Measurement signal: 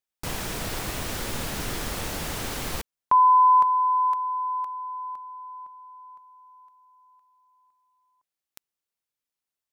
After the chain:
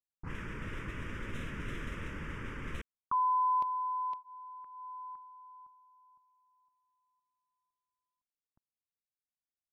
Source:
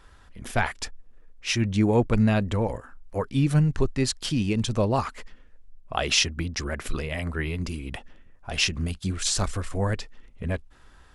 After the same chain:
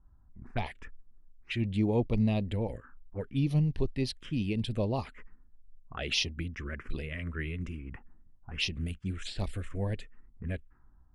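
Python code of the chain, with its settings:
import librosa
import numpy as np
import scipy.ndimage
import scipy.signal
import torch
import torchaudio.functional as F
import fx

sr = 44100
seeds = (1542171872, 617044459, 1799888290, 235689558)

y = fx.env_phaser(x, sr, low_hz=450.0, high_hz=1500.0, full_db=-19.5)
y = fx.env_lowpass(y, sr, base_hz=380.0, full_db=-23.5)
y = y * librosa.db_to_amplitude(-6.0)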